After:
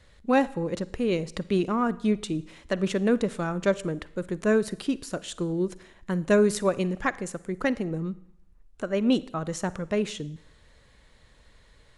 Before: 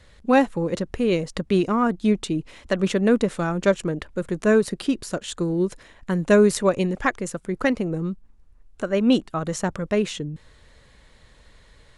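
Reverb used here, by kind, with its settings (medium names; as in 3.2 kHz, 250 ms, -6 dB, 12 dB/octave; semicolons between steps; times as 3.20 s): Schroeder reverb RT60 0.73 s, DRR 18 dB; trim -4.5 dB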